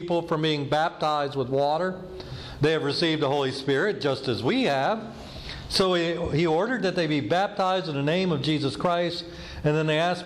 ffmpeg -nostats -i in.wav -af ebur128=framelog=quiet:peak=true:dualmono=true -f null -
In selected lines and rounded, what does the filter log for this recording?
Integrated loudness:
  I:         -22.0 LUFS
  Threshold: -32.4 LUFS
Loudness range:
  LRA:         1.0 LU
  Threshold: -42.3 LUFS
  LRA low:   -22.7 LUFS
  LRA high:  -21.7 LUFS
True peak:
  Peak:      -14.5 dBFS